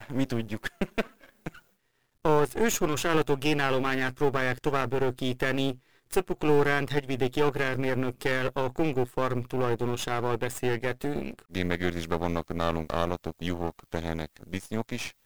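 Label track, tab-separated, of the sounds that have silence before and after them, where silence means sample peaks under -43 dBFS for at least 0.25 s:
2.250000	5.760000	sound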